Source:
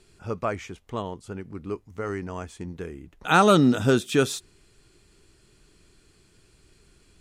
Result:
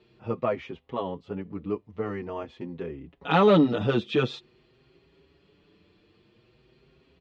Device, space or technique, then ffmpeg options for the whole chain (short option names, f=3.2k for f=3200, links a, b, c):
barber-pole flanger into a guitar amplifier: -filter_complex "[0:a]asplit=2[a][b];[b]adelay=6.2,afreqshift=0.48[c];[a][c]amix=inputs=2:normalize=1,asoftclip=type=tanh:threshold=-15dB,highpass=93,equalizer=f=100:t=q:w=4:g=-4,equalizer=f=510:t=q:w=4:g=4,equalizer=f=1.5k:t=q:w=4:g=-8,equalizer=f=2.2k:t=q:w=4:g=-3,lowpass=f=3.5k:w=0.5412,lowpass=f=3.5k:w=1.3066,volume=4dB"